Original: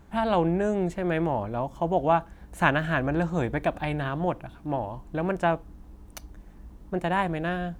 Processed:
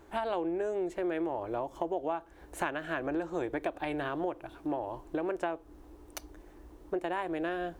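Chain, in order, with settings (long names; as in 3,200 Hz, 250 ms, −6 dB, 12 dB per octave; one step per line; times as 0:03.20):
low shelf with overshoot 260 Hz −8 dB, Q 3
downward compressor 6 to 1, threshold −30 dBFS, peak gain reduction 14.5 dB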